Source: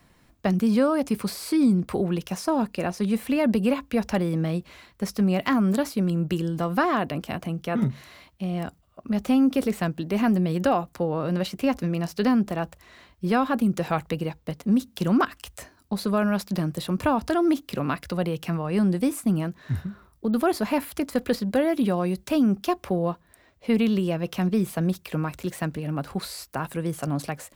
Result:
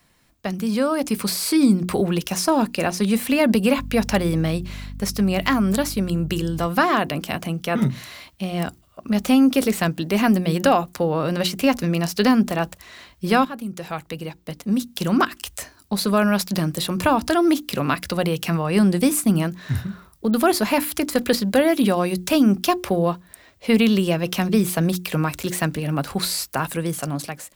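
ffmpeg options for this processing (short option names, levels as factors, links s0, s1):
-filter_complex "[0:a]asettb=1/sr,asplit=3[s0][s1][s2];[s0]atrim=end=3.784[s3];[s1]atrim=start=3.78:end=6.67,asetpts=PTS-STARTPTS,afade=t=in:d=0.004:c=qsin,afade=t=out:st=2.886:d=0.004:c=qsin,aeval=exprs='val(0)+0.0178*(sin(2*PI*50*n/s)+sin(2*PI*2*50*n/s)/2+sin(2*PI*3*50*n/s)/3+sin(2*PI*4*50*n/s)/4+sin(2*PI*5*50*n/s)/5)':c=same[s4];[s2]atrim=start=6.666[s5];[s3][s4]acrossfade=d=0.004:c1=hsin:c2=qsin[s6];[s6][s5]acrossfade=d=0.004:c1=qsin:c2=hsin,asplit=2[s7][s8];[s7]atrim=end=13.45,asetpts=PTS-STARTPTS,afade=t=out:st=13.446:d=0.004:c=hsin:silence=0.199526[s9];[s8]atrim=start=13.45,asetpts=PTS-STARTPTS,afade=t=in:d=2.86:silence=0.199526[s10];[s9][s10]concat=n=2:v=0:a=1,dynaudnorm=f=210:g=9:m=3.35,highshelf=f=2100:g=8,bandreject=f=60:t=h:w=6,bandreject=f=120:t=h:w=6,bandreject=f=180:t=h:w=6,bandreject=f=240:t=h:w=6,bandreject=f=300:t=h:w=6,bandreject=f=360:t=h:w=6,volume=0.631"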